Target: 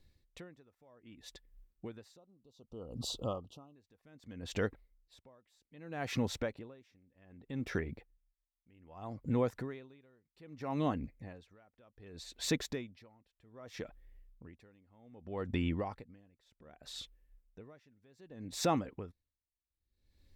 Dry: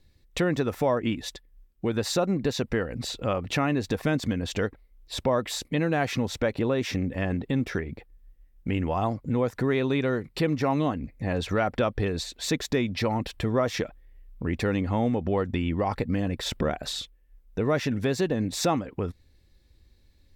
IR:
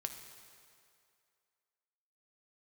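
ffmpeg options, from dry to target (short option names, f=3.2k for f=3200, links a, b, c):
-filter_complex "[0:a]asettb=1/sr,asplit=3[a][b][c];[a]atrim=end=2.174[d];[b]atrim=start=2.17:end=3.76,asetpts=PTS-STARTPTS,afade=t=in:d=0.004:c=qsin,afade=t=out:st=1.586:d=0.004:c=qsin,asuperstop=centerf=1900:order=12:qfactor=1.2[e];[c]atrim=start=3.756[f];[d][e]acrossfade=d=0.004:c1=hsin:c2=qsin[g];[g][f]acrossfade=d=0.004:c1=qsin:c2=hsin,aeval=exprs='val(0)*pow(10,-35*(0.5-0.5*cos(2*PI*0.64*n/s))/20)':c=same,volume=-5.5dB"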